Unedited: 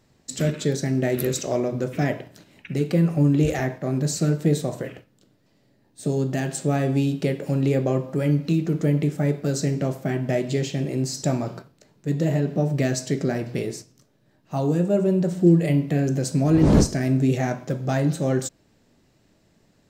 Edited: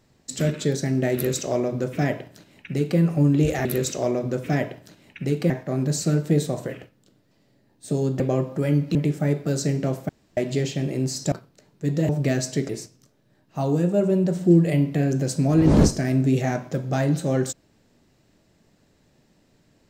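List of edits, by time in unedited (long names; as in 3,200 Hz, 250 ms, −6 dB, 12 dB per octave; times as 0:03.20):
0:01.14–0:02.99: duplicate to 0:03.65
0:06.35–0:07.77: remove
0:08.52–0:08.93: remove
0:10.07–0:10.35: fill with room tone
0:11.30–0:11.55: remove
0:12.32–0:12.63: remove
0:13.23–0:13.65: remove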